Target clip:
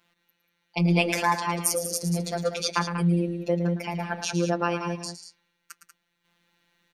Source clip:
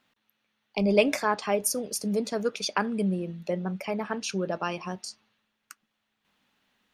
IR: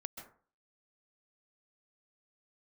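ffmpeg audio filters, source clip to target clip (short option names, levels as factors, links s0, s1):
-af "afftfilt=real='hypot(re,im)*cos(PI*b)':imag='0':win_size=1024:overlap=0.75,aecho=1:1:110.8|189.5:0.316|0.316,volume=1.88"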